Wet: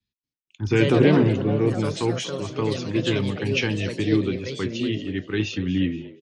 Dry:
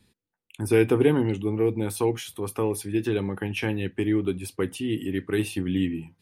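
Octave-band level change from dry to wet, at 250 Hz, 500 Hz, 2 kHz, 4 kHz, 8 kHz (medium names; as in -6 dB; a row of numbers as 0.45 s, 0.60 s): +3.0 dB, +1.0 dB, +5.0 dB, +8.0 dB, -1.5 dB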